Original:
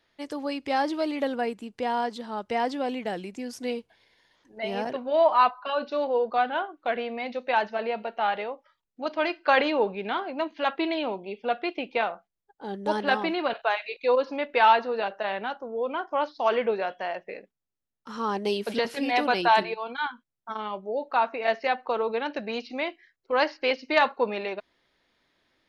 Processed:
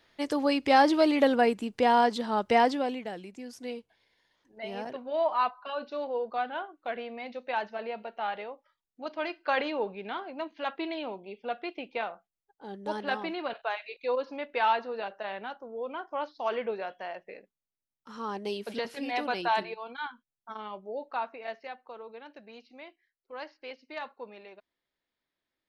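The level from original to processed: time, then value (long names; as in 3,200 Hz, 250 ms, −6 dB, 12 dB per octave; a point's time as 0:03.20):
0:02.58 +5 dB
0:03.11 −7 dB
0:21.03 −7 dB
0:21.82 −17.5 dB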